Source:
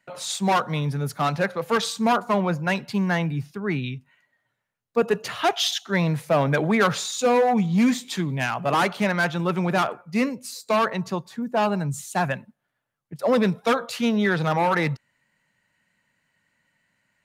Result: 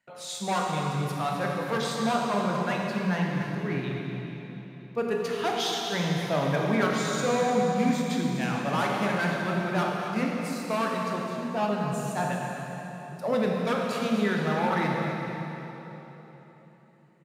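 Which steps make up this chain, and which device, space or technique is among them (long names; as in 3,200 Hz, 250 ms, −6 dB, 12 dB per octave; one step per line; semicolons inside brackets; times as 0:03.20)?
cave (single-tap delay 250 ms −11 dB; convolution reverb RT60 3.8 s, pre-delay 16 ms, DRR −1 dB)
level −8.5 dB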